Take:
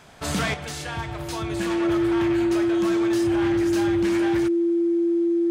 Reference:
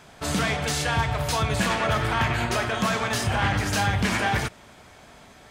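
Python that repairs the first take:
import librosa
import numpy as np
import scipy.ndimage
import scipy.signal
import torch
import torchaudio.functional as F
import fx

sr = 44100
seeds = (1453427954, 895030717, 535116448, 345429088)

y = fx.fix_declip(x, sr, threshold_db=-17.0)
y = fx.notch(y, sr, hz=340.0, q=30.0)
y = fx.fix_level(y, sr, at_s=0.54, step_db=7.0)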